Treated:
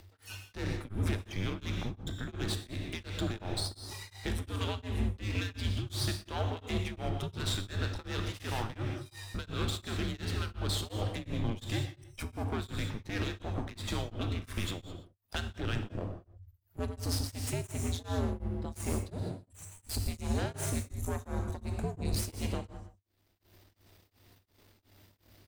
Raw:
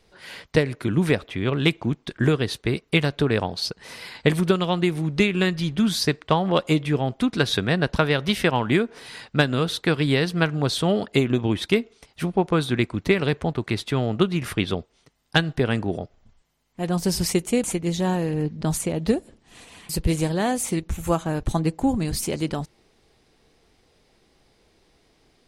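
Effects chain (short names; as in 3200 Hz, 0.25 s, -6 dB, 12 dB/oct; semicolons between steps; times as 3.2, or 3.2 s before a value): spectral noise reduction 29 dB; dynamic EQ 4100 Hz, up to +4 dB, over -42 dBFS, Q 1; limiter -18 dBFS, peak gain reduction 13.5 dB; upward compressor, threshold -28 dBFS; echo 0.121 s -13.5 dB; half-wave rectifier; non-linear reverb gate 0.23 s flat, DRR 4 dB; frequency shift -98 Hz; beating tremolo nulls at 2.8 Hz; gain -3 dB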